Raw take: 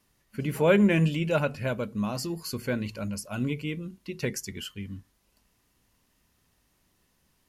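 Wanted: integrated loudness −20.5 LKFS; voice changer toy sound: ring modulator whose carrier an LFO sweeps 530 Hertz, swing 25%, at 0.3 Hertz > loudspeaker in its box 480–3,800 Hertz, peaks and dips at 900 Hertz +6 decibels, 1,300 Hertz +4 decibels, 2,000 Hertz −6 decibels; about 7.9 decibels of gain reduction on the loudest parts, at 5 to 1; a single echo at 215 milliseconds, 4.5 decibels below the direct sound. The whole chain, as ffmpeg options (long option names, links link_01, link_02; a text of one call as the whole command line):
ffmpeg -i in.wav -af "acompressor=threshold=-25dB:ratio=5,aecho=1:1:215:0.596,aeval=exprs='val(0)*sin(2*PI*530*n/s+530*0.25/0.3*sin(2*PI*0.3*n/s))':channel_layout=same,highpass=480,equalizer=frequency=900:width_type=q:width=4:gain=6,equalizer=frequency=1300:width_type=q:width=4:gain=4,equalizer=frequency=2000:width_type=q:width=4:gain=-6,lowpass=frequency=3800:width=0.5412,lowpass=frequency=3800:width=1.3066,volume=13.5dB" out.wav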